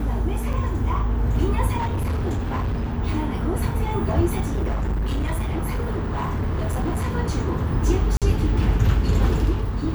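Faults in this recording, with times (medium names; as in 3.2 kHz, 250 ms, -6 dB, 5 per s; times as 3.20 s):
0.53–0.54 s: dropout 5.5 ms
1.77–2.94 s: clipped -20.5 dBFS
4.40–7.13 s: clipped -20 dBFS
8.17–8.22 s: dropout 47 ms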